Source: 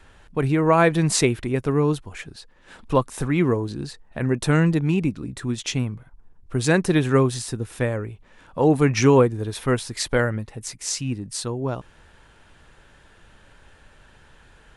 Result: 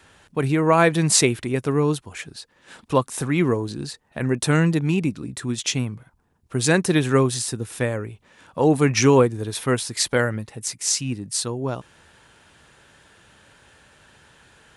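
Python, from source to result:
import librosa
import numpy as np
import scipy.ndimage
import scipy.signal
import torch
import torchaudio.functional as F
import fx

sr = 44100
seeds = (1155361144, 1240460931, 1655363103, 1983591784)

y = scipy.signal.sosfilt(scipy.signal.butter(2, 87.0, 'highpass', fs=sr, output='sos'), x)
y = fx.high_shelf(y, sr, hz=3600.0, db=7.0)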